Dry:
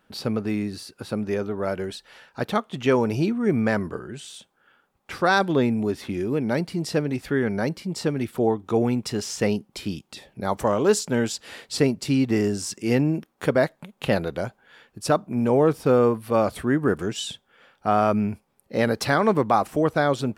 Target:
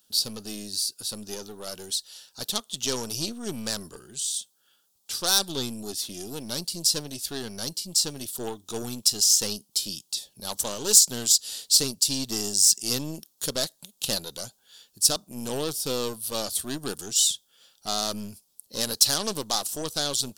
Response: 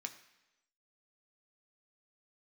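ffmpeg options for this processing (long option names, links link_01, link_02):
-af "aeval=exprs='0.473*(cos(1*acos(clip(val(0)/0.473,-1,1)))-cos(1*PI/2))+0.0422*(cos(8*acos(clip(val(0)/0.473,-1,1)))-cos(8*PI/2))':channel_layout=same,aexciter=amount=11.9:drive=8.4:freq=3400,volume=-12.5dB"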